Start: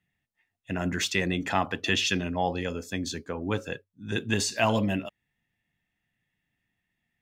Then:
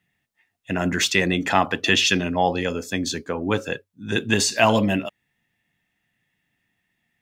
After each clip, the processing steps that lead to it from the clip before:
low-shelf EQ 90 Hz −10 dB
level +7.5 dB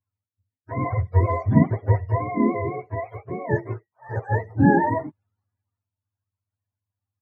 frequency axis turned over on the octave scale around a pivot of 430 Hz
multiband upward and downward expander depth 40%

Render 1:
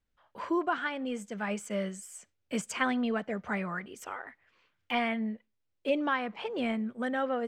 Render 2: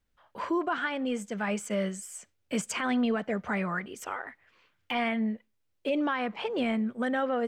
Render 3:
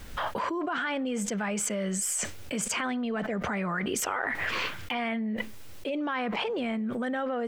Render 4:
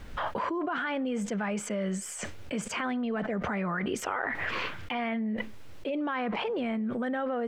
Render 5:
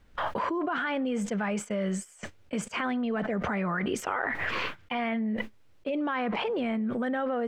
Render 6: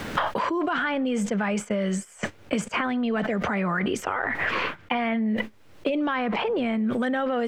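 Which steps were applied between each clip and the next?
brickwall limiter −24 dBFS, peak gain reduction 10.5 dB; level +4 dB
envelope flattener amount 100%; level −5.5 dB
low-pass filter 2,500 Hz 6 dB per octave
noise gate −35 dBFS, range −17 dB; level +1.5 dB
multiband upward and downward compressor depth 100%; level +3.5 dB

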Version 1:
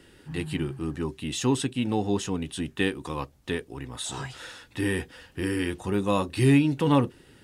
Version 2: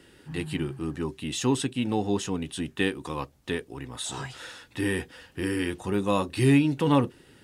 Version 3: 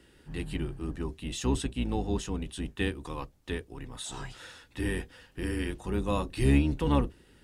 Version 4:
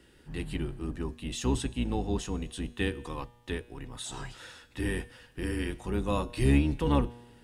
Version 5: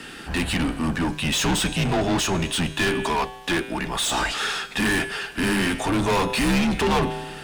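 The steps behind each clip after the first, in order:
low-shelf EQ 66 Hz −6.5 dB
sub-octave generator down 2 octaves, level +1 dB; level −5.5 dB
tuned comb filter 120 Hz, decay 1.2 s, harmonics all, mix 50%; level +5.5 dB
mid-hump overdrive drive 32 dB, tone 5,800 Hz, clips at −13.5 dBFS; frequency shifter −86 Hz

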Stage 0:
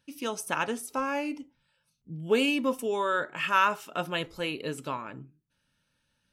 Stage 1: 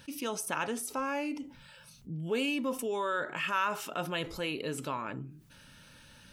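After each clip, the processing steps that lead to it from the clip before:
envelope flattener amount 50%
level −8.5 dB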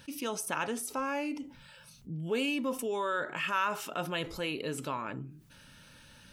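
no processing that can be heard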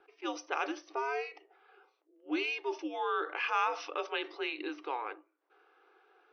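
brick-wall band-pass 420–6,300 Hz
frequency shifter −130 Hz
low-pass that shuts in the quiet parts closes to 930 Hz, open at −28.5 dBFS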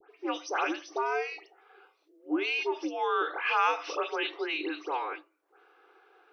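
all-pass dispersion highs, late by 106 ms, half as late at 2,300 Hz
level +4.5 dB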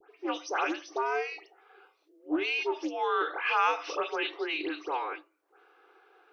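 highs frequency-modulated by the lows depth 0.13 ms

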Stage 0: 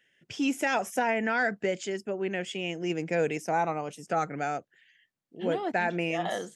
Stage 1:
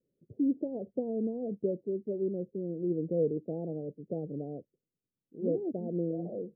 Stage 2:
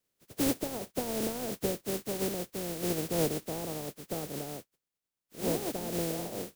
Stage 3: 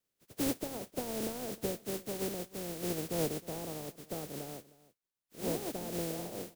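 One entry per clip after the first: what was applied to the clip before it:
Butterworth low-pass 530 Hz 48 dB per octave
compressing power law on the bin magnitudes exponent 0.3
single-tap delay 310 ms −20 dB; level −4 dB

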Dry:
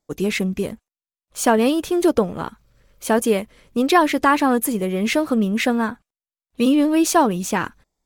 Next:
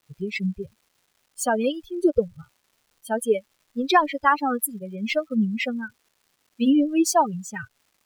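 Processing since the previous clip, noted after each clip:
spectral dynamics exaggerated over time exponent 3
surface crackle 530 per second −54 dBFS
level +1.5 dB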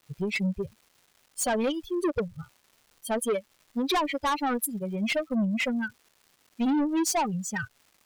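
in parallel at −1.5 dB: downward compressor, threshold −28 dBFS, peak gain reduction 15.5 dB
on the sum: soft clipping −20.5 dBFS, distortion −8 dB
level −1.5 dB

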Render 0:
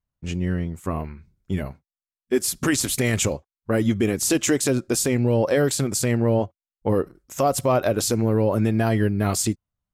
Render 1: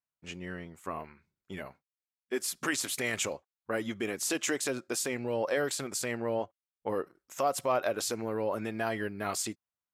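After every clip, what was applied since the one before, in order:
high-pass filter 1,400 Hz 6 dB per octave
high-shelf EQ 3,000 Hz −10.5 dB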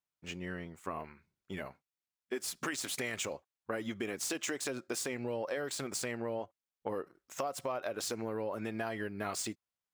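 running median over 3 samples
downward compressor, threshold −33 dBFS, peak gain reduction 9.5 dB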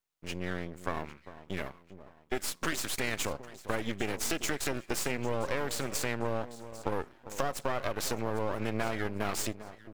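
delay that swaps between a low-pass and a high-pass 400 ms, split 1,000 Hz, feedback 56%, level −13 dB
half-wave rectification
level +7.5 dB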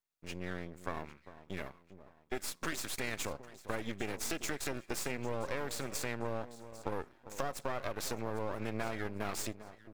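notch filter 3,000 Hz, Q 21
level −5 dB

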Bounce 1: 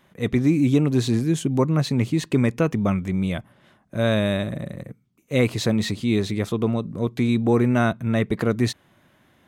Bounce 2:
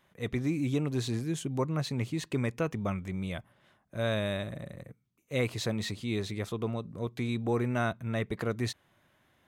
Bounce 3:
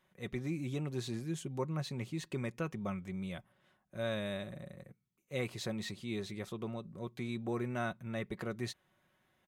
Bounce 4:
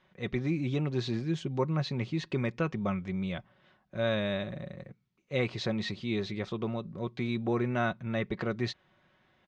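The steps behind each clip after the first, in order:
parametric band 230 Hz −5.5 dB 1.5 octaves; level −7.5 dB
comb filter 5.4 ms, depth 39%; level −7 dB
low-pass filter 5,100 Hz 24 dB per octave; level +7 dB

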